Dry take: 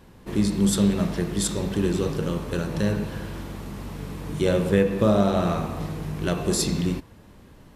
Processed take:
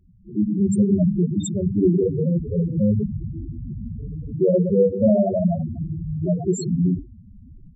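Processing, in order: hum notches 50/100/150/200/250/300/350/400/450/500 Hz; level rider gain up to 11 dB; loudest bins only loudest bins 4

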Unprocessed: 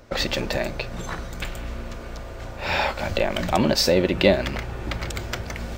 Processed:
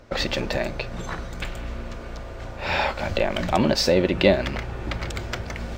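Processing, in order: treble shelf 8.9 kHz -10 dB

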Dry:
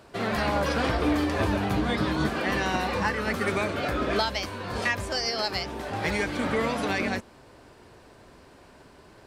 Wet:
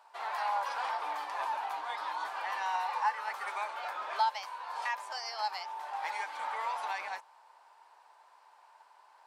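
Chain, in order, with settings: ladder high-pass 830 Hz, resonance 75%

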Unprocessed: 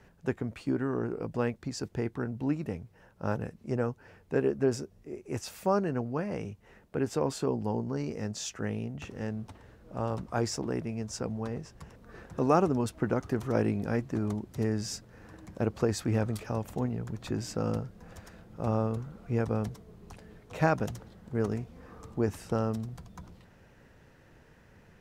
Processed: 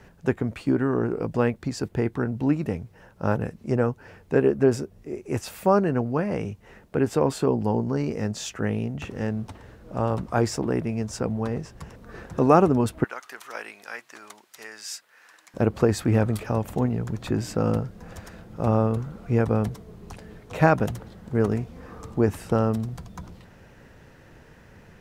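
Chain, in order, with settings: 13.04–15.54 s: high-pass 1.5 kHz 12 dB/octave; dynamic bell 5.8 kHz, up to -6 dB, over -57 dBFS, Q 1.3; trim +7.5 dB

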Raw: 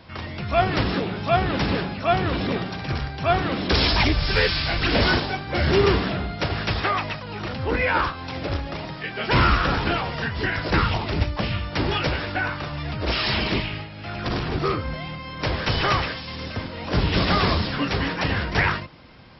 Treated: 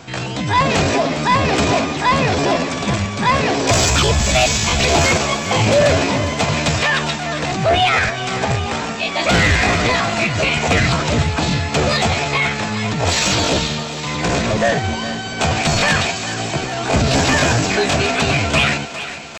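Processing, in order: in parallel at -0.5 dB: peak limiter -16.5 dBFS, peak gain reduction 9 dB; on the sum: small resonant body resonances 470/1700 Hz, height 8 dB, ringing for 45 ms; pitch shift +6.5 st; saturation -8.5 dBFS, distortion -20 dB; thinning echo 406 ms, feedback 67%, level -12 dB; trim +2.5 dB

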